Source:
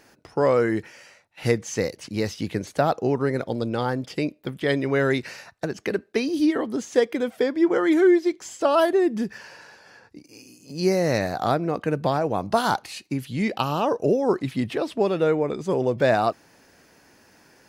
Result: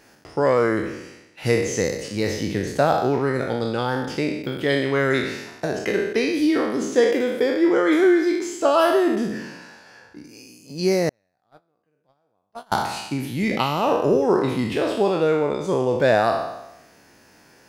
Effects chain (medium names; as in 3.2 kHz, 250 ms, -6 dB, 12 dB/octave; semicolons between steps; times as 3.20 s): spectral sustain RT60 0.93 s; 11.09–12.72 s: gate -13 dBFS, range -48 dB